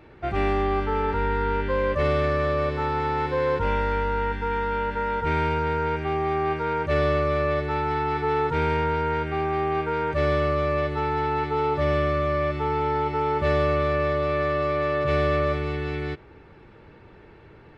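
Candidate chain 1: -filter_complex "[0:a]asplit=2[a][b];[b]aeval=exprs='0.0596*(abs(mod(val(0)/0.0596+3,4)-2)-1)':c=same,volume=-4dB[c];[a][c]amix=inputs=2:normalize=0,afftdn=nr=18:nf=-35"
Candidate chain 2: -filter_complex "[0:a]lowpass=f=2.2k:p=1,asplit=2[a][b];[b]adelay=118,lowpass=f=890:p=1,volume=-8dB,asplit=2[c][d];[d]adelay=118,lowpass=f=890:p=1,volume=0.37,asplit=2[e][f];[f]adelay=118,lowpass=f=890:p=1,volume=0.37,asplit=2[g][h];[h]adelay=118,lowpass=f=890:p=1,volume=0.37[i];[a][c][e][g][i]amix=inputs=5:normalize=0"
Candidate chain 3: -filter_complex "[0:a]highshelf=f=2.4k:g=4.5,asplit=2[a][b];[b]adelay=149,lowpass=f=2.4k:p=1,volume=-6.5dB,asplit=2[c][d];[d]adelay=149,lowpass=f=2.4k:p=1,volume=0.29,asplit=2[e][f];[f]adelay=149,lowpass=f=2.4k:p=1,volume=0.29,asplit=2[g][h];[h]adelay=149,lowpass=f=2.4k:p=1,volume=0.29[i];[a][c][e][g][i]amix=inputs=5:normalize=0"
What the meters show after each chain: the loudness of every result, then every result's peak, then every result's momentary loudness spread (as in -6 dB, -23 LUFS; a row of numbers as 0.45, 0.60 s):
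-23.0, -25.0, -23.5 LUFS; -11.0, -12.0, -9.5 dBFS; 2, 3, 4 LU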